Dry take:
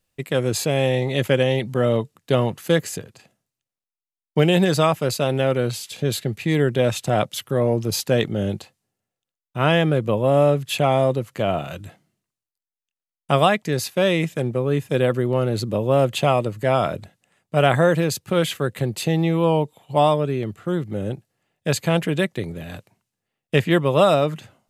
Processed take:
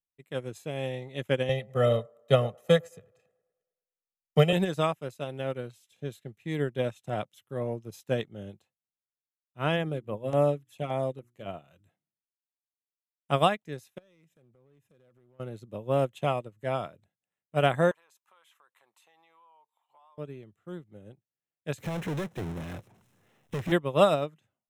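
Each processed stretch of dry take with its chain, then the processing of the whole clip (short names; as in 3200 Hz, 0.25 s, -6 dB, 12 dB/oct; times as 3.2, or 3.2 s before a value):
1.49–4.53 comb 1.6 ms, depth 78% + band-limited delay 0.105 s, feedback 50%, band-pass 690 Hz, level -11.5 dB + three-band squash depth 40%
9.76–11.46 notches 60/120/180/240/300/360 Hz + LFO notch saw down 3.5 Hz 550–7100 Hz
13.98–15.4 compressor 12:1, threshold -29 dBFS + overloaded stage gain 28 dB
17.91–20.18 resonant high-pass 1000 Hz, resonance Q 4.5 + compressor 5:1, threshold -31 dBFS
21.78–23.72 high shelf 2600 Hz -11 dB + compressor 10:1, threshold -21 dBFS + power-law curve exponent 0.35
whole clip: notch 4600 Hz, Q 5.4; upward expander 2.5:1, over -29 dBFS; gain -3 dB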